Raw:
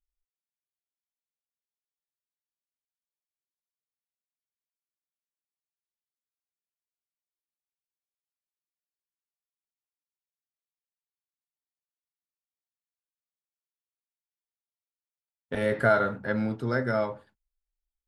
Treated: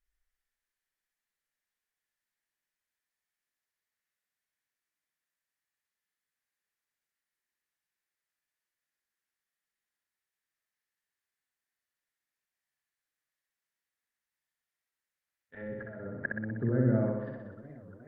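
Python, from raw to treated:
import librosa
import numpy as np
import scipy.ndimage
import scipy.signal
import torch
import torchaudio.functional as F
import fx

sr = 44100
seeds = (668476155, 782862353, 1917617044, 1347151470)

p1 = fx.rider(x, sr, range_db=10, speed_s=0.5)
p2 = fx.env_lowpass_down(p1, sr, base_hz=320.0, full_db=-25.5)
p3 = fx.auto_swell(p2, sr, attack_ms=606.0)
p4 = fx.peak_eq(p3, sr, hz=1800.0, db=13.0, octaves=0.6)
p5 = p4 + fx.room_flutter(p4, sr, wall_m=10.7, rt60_s=1.1, dry=0)
p6 = fx.echo_warbled(p5, sr, ms=421, feedback_pct=73, rate_hz=2.8, cents=185, wet_db=-21)
y = F.gain(torch.from_numpy(p6), 3.0).numpy()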